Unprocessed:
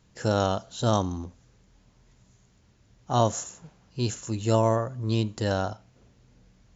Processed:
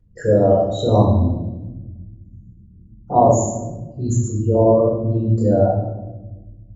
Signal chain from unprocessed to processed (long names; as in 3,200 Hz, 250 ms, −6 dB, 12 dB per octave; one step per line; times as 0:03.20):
spectral envelope exaggerated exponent 3
0:01.17–0:03.18: hollow resonant body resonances 220/320/1,400 Hz, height 14 dB, ringing for 45 ms
convolution reverb RT60 1.1 s, pre-delay 4 ms, DRR −6.5 dB
level −4.5 dB